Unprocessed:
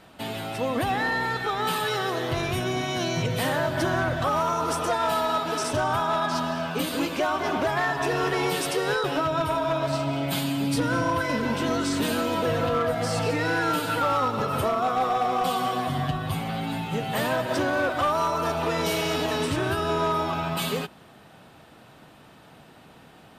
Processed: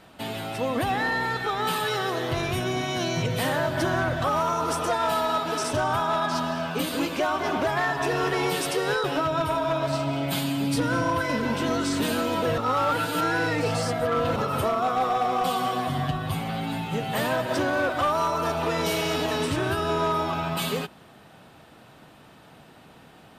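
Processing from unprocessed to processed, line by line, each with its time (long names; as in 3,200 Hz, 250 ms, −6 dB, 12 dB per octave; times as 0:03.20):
0:12.58–0:14.36: reverse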